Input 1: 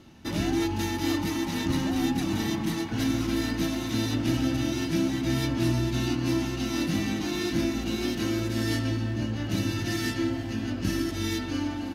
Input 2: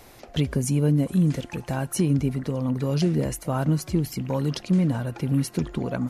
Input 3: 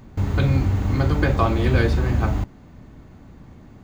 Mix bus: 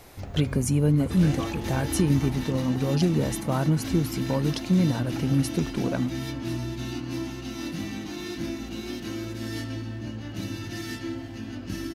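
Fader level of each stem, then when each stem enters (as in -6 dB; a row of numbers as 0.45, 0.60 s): -5.5, -0.5, -15.5 dB; 0.85, 0.00, 0.00 s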